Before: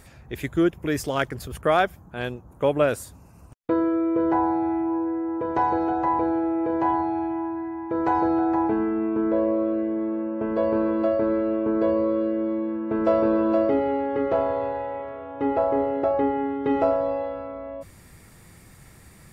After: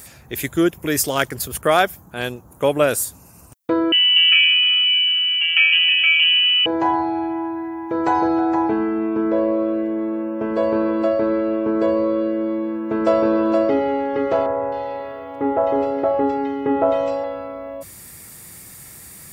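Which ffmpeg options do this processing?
ffmpeg -i in.wav -filter_complex "[0:a]asettb=1/sr,asplit=3[link_01][link_02][link_03];[link_01]atrim=end=3.924[link_04];[link_02]atrim=start=3.92:end=6.66,asetpts=PTS-STARTPTS,afade=type=in:duration=0.004:curve=qsin,afade=type=out:start_time=2.736:duration=0.004:curve=qsin,lowpass=frequency=2800:width_type=q:width=0.5098,lowpass=frequency=2800:width_type=q:width=0.6013,lowpass=frequency=2800:width_type=q:width=0.9,lowpass=frequency=2800:width_type=q:width=2.563,afreqshift=-3300[link_05];[link_03]atrim=start=6.656[link_06];[link_04][link_05]acrossfade=duration=0.004:curve1=hsin:curve2=qsin[link_07];[link_07][link_06]acrossfade=duration=0.004:curve1=qsin:curve2=hsin,asettb=1/sr,asplit=3[link_08][link_09][link_10];[link_08]atrim=end=14.464[link_11];[link_09]atrim=start=14.46:end=17.24,asetpts=PTS-STARTPTS,afade=type=in:duration=0.004:curve=qsin,afade=type=out:start_time=2.776:duration=0.004:curve=qsin,acrossover=split=2100[link_12][link_13];[link_13]adelay=260[link_14];[link_12][link_14]amix=inputs=2:normalize=0,atrim=end_sample=122598[link_15];[link_10]atrim=start=17.236[link_16];[link_11][link_15]acrossfade=duration=0.004:curve1=hsin:curve2=qsin[link_17];[link_17][link_16]acrossfade=duration=0.004:curve1=qsin:curve2=hsin,highpass=frequency=100:poles=1,aemphasis=mode=production:type=75kf,volume=3.5dB" out.wav

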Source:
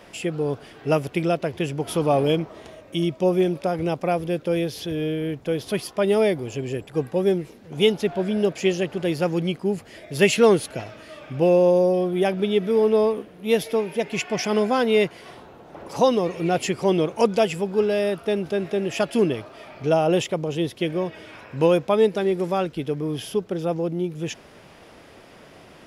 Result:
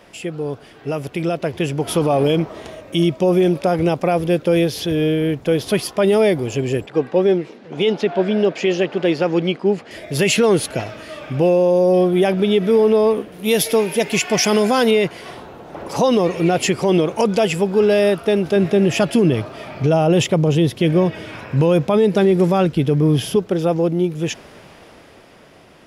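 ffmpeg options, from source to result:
ffmpeg -i in.wav -filter_complex "[0:a]asettb=1/sr,asplit=3[link_01][link_02][link_03];[link_01]atrim=end=6.864[link_04];[link_02]atrim=start=6.86:end=9.91,asetpts=PTS-STARTPTS,afade=type=in:duration=0.004:curve=qsin,afade=type=out:start_time=3.046:duration=0.004:curve=qsin,highpass=220,lowpass=4400[link_05];[link_03]atrim=start=9.906[link_06];[link_04][link_05]acrossfade=duration=0.004:curve1=hsin:curve2=qsin[link_07];[link_07][link_06]acrossfade=duration=0.004:curve1=qsin:curve2=hsin,asettb=1/sr,asplit=3[link_08][link_09][link_10];[link_08]atrim=end=13.324[link_11];[link_09]atrim=start=13.32:end=14.91,asetpts=PTS-STARTPTS,afade=type=in:duration=0.004:curve=qsin,afade=type=out:start_time=1.586:duration=0.004:curve=qsin,highshelf=frequency=4400:gain=11[link_12];[link_10]atrim=start=14.906[link_13];[link_11][link_12]acrossfade=duration=0.004:curve1=hsin:curve2=qsin[link_14];[link_14][link_13]acrossfade=duration=0.004:curve1=qsin:curve2=hsin,asettb=1/sr,asplit=3[link_15][link_16][link_17];[link_15]atrim=end=18.564[link_18];[link_16]atrim=start=18.56:end=23.36,asetpts=PTS-STARTPTS,afade=type=in:duration=0.004:curve=qsin,afade=type=out:start_time=4.796:duration=0.004:curve=qsin,equalizer=frequency=130:width=0.73:gain=7.5[link_19];[link_17]atrim=start=23.356[link_20];[link_18][link_19]acrossfade=duration=0.004:curve1=hsin:curve2=qsin[link_21];[link_21][link_20]acrossfade=duration=0.004:curve1=qsin:curve2=hsin,alimiter=limit=-15dB:level=0:latency=1:release=37,dynaudnorm=framelen=270:gausssize=11:maxgain=8dB" out.wav

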